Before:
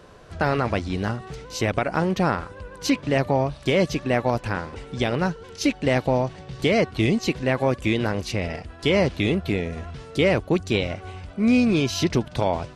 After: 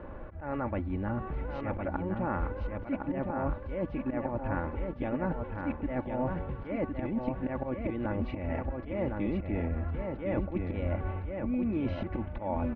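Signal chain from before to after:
volume swells 149 ms
spectral tilt −2 dB per octave
comb filter 3.5 ms, depth 55%
reversed playback
downward compressor 6 to 1, threshold −31 dBFS, peak gain reduction 20.5 dB
reversed playback
low-pass filter 2,300 Hz 24 dB per octave
parametric band 870 Hz +4 dB 0.5 octaves
on a send: repeating echo 1,061 ms, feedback 22%, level −4.5 dB

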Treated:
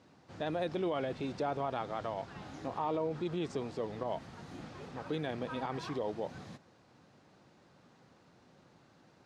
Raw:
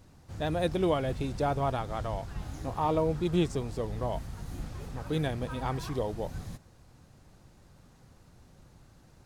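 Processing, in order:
brickwall limiter −25.5 dBFS, peak gain reduction 10 dB
band-pass filter 210–4,600 Hz

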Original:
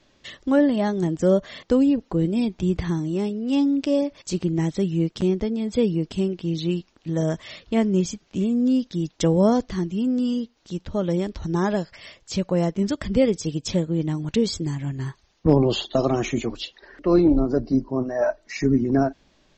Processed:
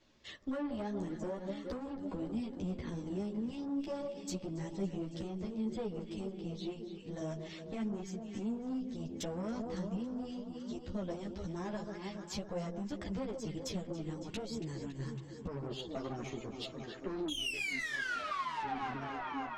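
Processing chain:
sound drawn into the spectrogram fall, 0:17.28–0:18.79, 730–3,400 Hz −12 dBFS
transient designer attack −3 dB, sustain −7 dB
delay that swaps between a low-pass and a high-pass 139 ms, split 1,200 Hz, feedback 81%, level −11 dB
brickwall limiter −11.5 dBFS, peak gain reduction 9 dB
tube saturation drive 20 dB, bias 0.5
downward compressor, threshold −31 dBFS, peak gain reduction 9.5 dB
string-ensemble chorus
level −2.5 dB

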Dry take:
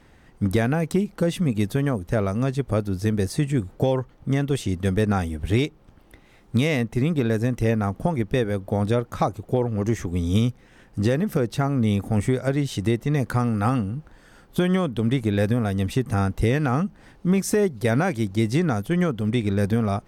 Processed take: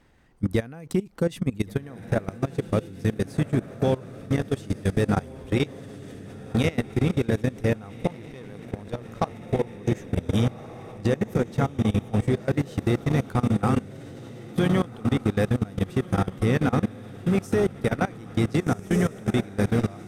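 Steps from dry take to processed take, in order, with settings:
feedback delay with all-pass diffusion 1,514 ms, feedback 66%, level −4.5 dB
0:08.07–0:09.31: power curve on the samples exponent 1.4
output level in coarse steps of 20 dB

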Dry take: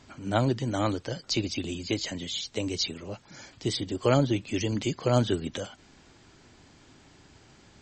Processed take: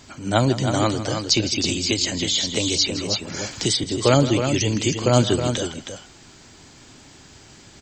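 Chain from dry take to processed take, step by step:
high-shelf EQ 5,000 Hz +11 dB
multi-tap delay 160/317 ms −14.5/−7.5 dB
0:01.64–0:03.84: multiband upward and downward compressor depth 70%
level +6 dB

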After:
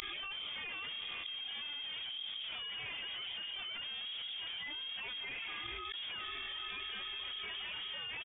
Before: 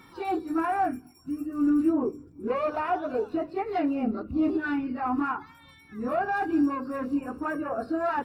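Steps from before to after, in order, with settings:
comb filter 4.8 ms, depth 97%
speech leveller 2 s
brickwall limiter −22.5 dBFS, peak gain reduction 10 dB
hard clipping −38 dBFS, distortion −5 dB
flanger 0.27 Hz, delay 4.1 ms, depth 4.5 ms, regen +54%
gate with flip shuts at −48 dBFS, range −41 dB
on a send: feedback delay with all-pass diffusion 452 ms, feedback 56%, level −13 dB
on the sum: voice inversion scrambler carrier 3,500 Hz
envelope flattener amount 100%
level +16.5 dB

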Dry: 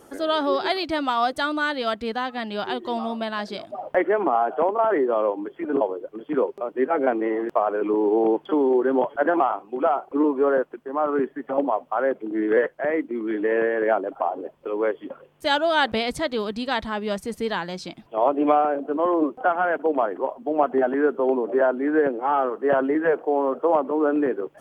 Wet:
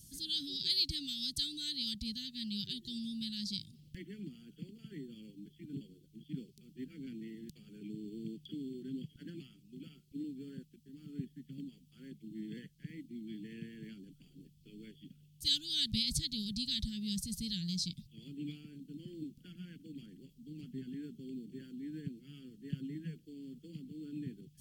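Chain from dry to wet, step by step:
elliptic band-stop filter 160–4,200 Hz, stop band 70 dB
level +3.5 dB

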